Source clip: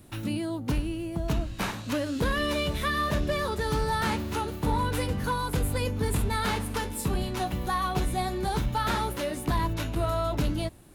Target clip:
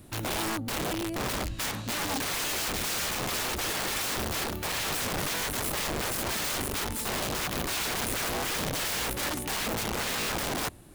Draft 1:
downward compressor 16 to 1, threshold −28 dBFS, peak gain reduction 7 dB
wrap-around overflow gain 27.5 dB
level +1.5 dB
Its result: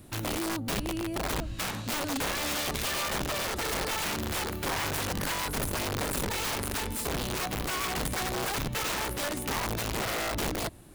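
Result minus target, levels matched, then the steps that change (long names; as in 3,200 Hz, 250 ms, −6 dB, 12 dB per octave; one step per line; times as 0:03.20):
downward compressor: peak gain reduction +7 dB
remove: downward compressor 16 to 1, threshold −28 dBFS, peak gain reduction 7 dB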